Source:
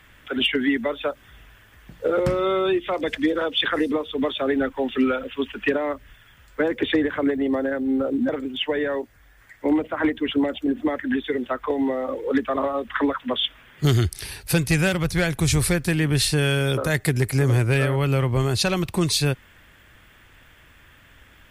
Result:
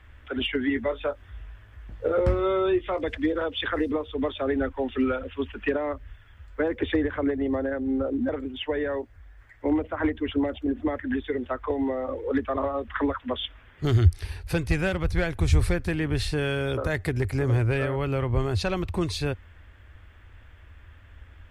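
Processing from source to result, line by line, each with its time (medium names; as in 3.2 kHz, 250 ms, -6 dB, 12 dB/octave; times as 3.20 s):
0.68–3.03 s: doubling 19 ms -8 dB
whole clip: low-pass 1.8 kHz 6 dB/octave; resonant low shelf 110 Hz +7.5 dB, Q 3; trim -2.5 dB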